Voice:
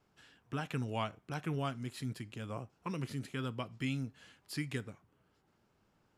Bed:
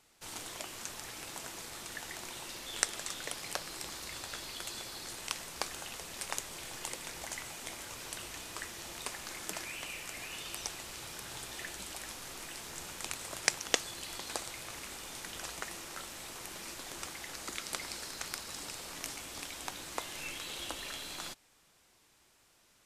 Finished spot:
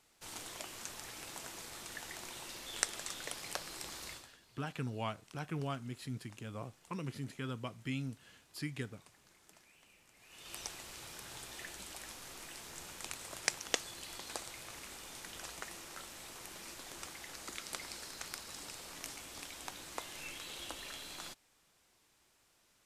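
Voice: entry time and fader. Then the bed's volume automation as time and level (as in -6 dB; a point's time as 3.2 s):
4.05 s, -2.5 dB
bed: 4.11 s -3 dB
4.37 s -23 dB
10.14 s -23 dB
10.55 s -4.5 dB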